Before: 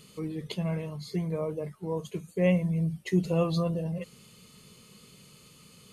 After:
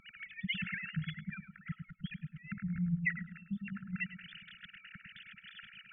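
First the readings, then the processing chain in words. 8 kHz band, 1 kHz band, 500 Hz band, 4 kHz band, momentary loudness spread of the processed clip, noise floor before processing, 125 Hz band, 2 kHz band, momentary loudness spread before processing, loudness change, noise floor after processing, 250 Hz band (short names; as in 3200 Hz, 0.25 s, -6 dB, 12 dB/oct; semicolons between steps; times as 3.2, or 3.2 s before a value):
under -30 dB, -15.0 dB, under -40 dB, -1.5 dB, 16 LU, -56 dBFS, -10.0 dB, +5.0 dB, 11 LU, -9.5 dB, -64 dBFS, -10.0 dB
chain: sine-wave speech; treble ducked by the level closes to 970 Hz, closed at -26 dBFS; bell 370 Hz -8 dB 1.8 oct; harmonic-percussive split harmonic -17 dB; bell 1800 Hz +7 dB 0.32 oct; compressor 6:1, threshold -49 dBFS, peak gain reduction 19.5 dB; brick-wall FIR band-stop 210–1300 Hz; darkening echo 0.104 s, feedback 52%, low-pass 840 Hz, level -6 dB; gain +17.5 dB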